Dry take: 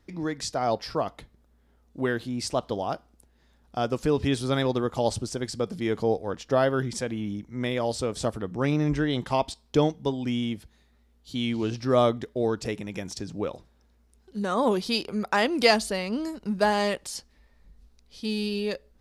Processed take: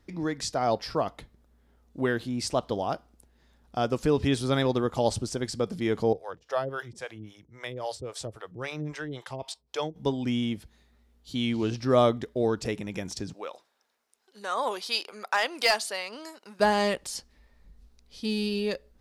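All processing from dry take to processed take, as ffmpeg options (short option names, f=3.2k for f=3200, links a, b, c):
-filter_complex "[0:a]asettb=1/sr,asplit=3[a][b][c];[a]atrim=end=6.134[d];[b]atrim=start=6.13:end=9.96,asetpts=PTS-STARTPTS,afade=t=in:d=0.004:c=qsin,afade=t=out:st=3.826:d=0.004:c=qsin,highpass=100,acrossover=split=470[e][f];[e]aeval=exprs='val(0)*(1-1/2+1/2*cos(2*PI*3.7*n/s))':c=same[g];[f]aeval=exprs='val(0)*(1-1/2-1/2*cos(2*PI*3.7*n/s))':c=same[h];[g][h]amix=inputs=2:normalize=0,equalizer=f=230:t=o:w=1:g=-13.5[i];[c]atrim=start=9.956[j];[d][i]acrossfade=d=0.004:c1=hsin:c2=qsin[k];[k][j]acrossfade=d=0.004:c1=qsin:c2=hsin,asettb=1/sr,asplit=3[l][m][n];[l]atrim=end=13.334[o];[m]atrim=start=13.33:end=16.6,asetpts=PTS-STARTPTS,afade=t=in:d=0.004:c=qsin,afade=t=out:st=3.266:d=0.004:c=qsin,highpass=730,volume=15dB,asoftclip=hard,volume=-15dB[p];[n]atrim=start=16.596[q];[o][p]acrossfade=d=0.004:c1=hsin:c2=qsin[r];[r][q]acrossfade=d=0.004:c1=qsin:c2=hsin"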